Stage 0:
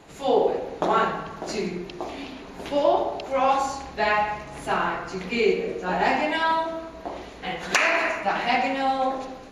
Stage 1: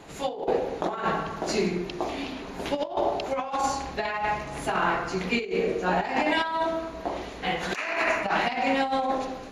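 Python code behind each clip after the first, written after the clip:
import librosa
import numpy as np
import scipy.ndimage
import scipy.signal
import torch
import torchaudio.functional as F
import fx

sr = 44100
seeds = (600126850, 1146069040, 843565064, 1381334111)

y = fx.over_compress(x, sr, threshold_db=-25.0, ratio=-0.5)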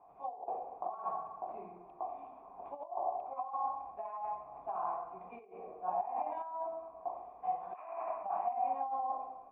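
y = fx.formant_cascade(x, sr, vowel='a')
y = y * 10.0 ** (-2.0 / 20.0)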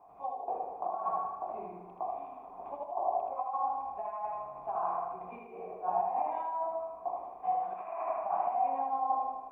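y = fx.echo_feedback(x, sr, ms=78, feedback_pct=48, wet_db=-4)
y = y * 10.0 ** (3.0 / 20.0)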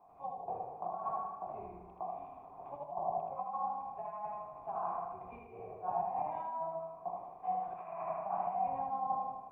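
y = fx.octave_divider(x, sr, octaves=2, level_db=-4.0)
y = y * 10.0 ** (-4.5 / 20.0)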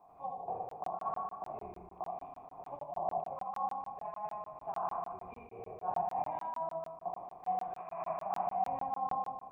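y = fx.buffer_crackle(x, sr, first_s=0.69, period_s=0.15, block=1024, kind='zero')
y = y * 10.0 ** (1.0 / 20.0)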